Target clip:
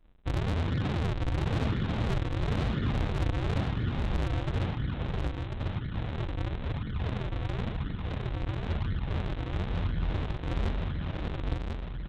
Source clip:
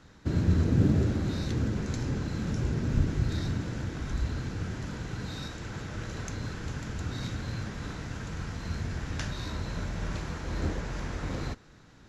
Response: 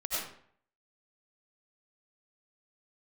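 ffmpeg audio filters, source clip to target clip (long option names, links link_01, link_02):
-filter_complex "[0:a]anlmdn=3.98,lowshelf=frequency=200:gain=6,alimiter=limit=-16.5dB:level=0:latency=1:release=326,aresample=8000,acrusher=samples=22:mix=1:aa=0.000001:lfo=1:lforange=35.2:lforate=0.98,aresample=44100,asoftclip=type=tanh:threshold=-25dB,asplit=2[link_01][link_02];[link_02]aecho=0:1:1044:0.631[link_03];[link_01][link_03]amix=inputs=2:normalize=0"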